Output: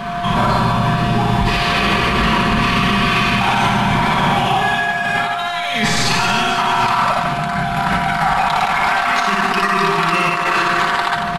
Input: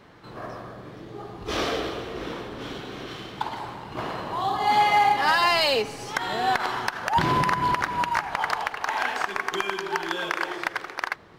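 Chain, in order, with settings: band shelf 520 Hz -12.5 dB; comb 5.2 ms, depth 69%; negative-ratio compressor -36 dBFS, ratio -1; formant shift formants -4 st; whine 700 Hz -46 dBFS; reverse bouncing-ball echo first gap 60 ms, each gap 1.5×, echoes 5; maximiser +24.5 dB; gain -5.5 dB

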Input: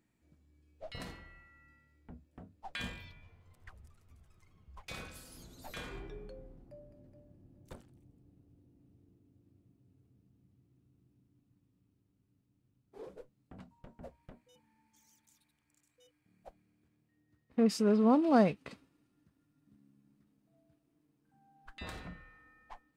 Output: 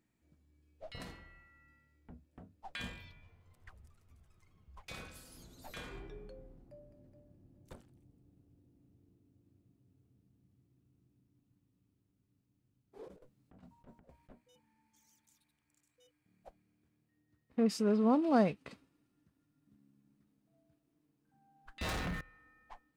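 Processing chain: 13.08–14.3 negative-ratio compressor -55 dBFS, ratio -0.5; 21.81–22.21 sample leveller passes 5; gain -2.5 dB

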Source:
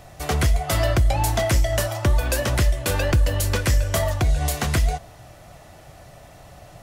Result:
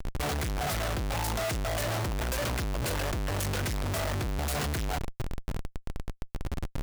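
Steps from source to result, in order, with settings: 1.49–3.68 compressor, threshold -20 dBFS, peak gain reduction 6.5 dB; Schmitt trigger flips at -36.5 dBFS; gain -7.5 dB

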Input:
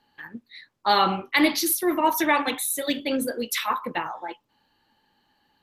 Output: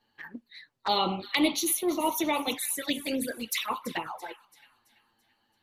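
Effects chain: thin delay 0.334 s, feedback 44%, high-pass 2100 Hz, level -14 dB; harmonic-percussive split harmonic -4 dB; envelope flanger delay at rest 9.2 ms, full sweep at -24 dBFS

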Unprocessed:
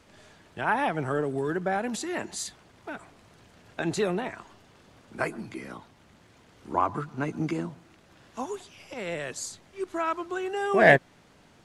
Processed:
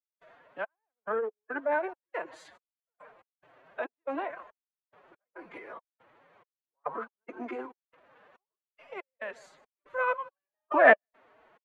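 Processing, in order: bell 9300 Hz -12 dB 2.7 oct; notch 5100 Hz, Q 18; on a send: echo 0.155 s -21 dB; on the sum: step gate ".xx..x.xx" 70 bpm -60 dB; three-band isolator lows -22 dB, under 430 Hz, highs -18 dB, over 2800 Hz; formant-preserving pitch shift +7.5 st; gain +3 dB

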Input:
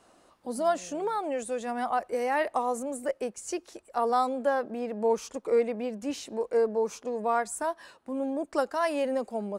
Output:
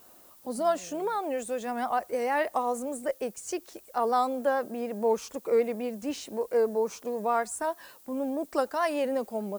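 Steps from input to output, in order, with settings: added noise violet -55 dBFS; vibrato 6.6 Hz 46 cents

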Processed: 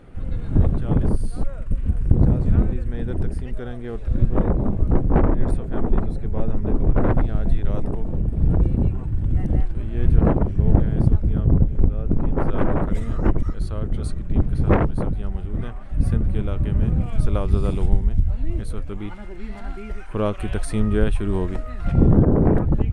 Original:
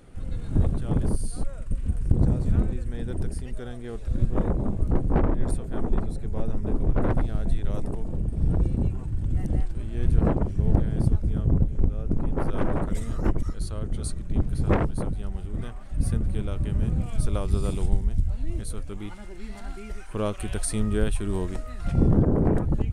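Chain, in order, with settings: tone controls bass 0 dB, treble -13 dB; gain +5 dB

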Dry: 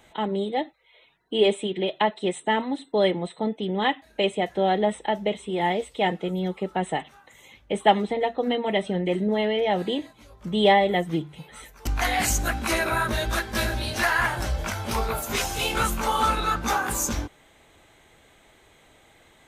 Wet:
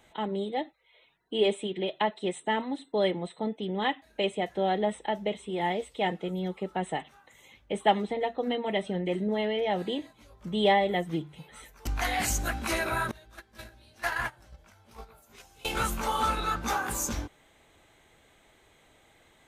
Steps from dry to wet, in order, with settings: 13.11–15.65 gate -21 dBFS, range -23 dB; gain -5 dB

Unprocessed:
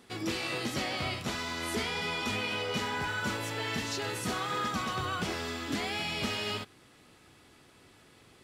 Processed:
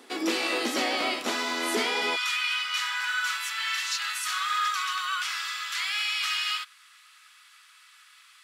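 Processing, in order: Chebyshev high-pass 260 Hz, order 4, from 2.15 s 1200 Hz; gain +7.5 dB

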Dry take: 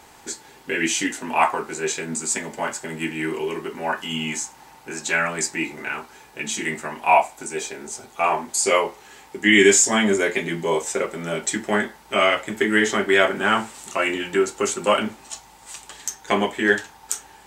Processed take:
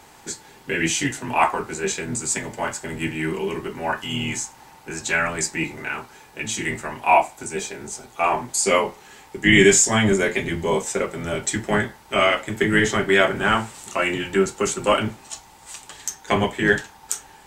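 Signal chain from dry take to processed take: octaver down 1 oct, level -3 dB

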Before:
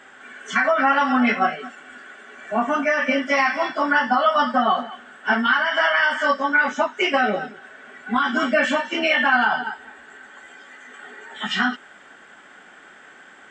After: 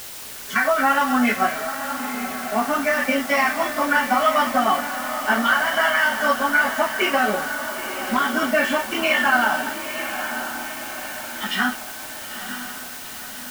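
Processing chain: crossover distortion -40 dBFS; diffused feedback echo 0.94 s, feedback 53%, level -9 dB; requantised 6-bit, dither triangular

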